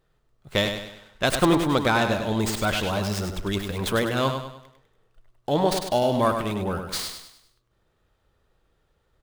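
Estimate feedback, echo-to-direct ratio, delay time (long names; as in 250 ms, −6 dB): 42%, −6.0 dB, 100 ms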